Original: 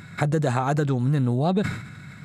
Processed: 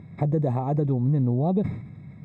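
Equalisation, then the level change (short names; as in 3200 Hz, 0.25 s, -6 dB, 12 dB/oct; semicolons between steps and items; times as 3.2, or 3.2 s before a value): running mean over 30 samples; 0.0 dB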